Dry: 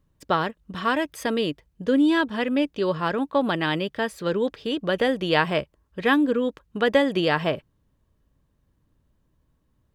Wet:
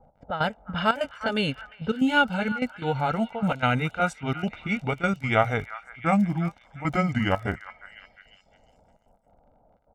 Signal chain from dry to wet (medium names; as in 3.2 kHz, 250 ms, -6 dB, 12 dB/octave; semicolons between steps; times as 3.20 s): pitch bend over the whole clip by -10.5 st starting unshifted; band noise 180–970 Hz -61 dBFS; gain riding 2 s; trance gate "x.x.xxxx" 149 bpm -12 dB; crackle 37 per s -38 dBFS; level-controlled noise filter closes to 720 Hz, open at -22 dBFS; comb 1.4 ms, depth 77%; on a send: repeats whose band climbs or falls 353 ms, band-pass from 1.4 kHz, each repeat 0.7 oct, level -12 dB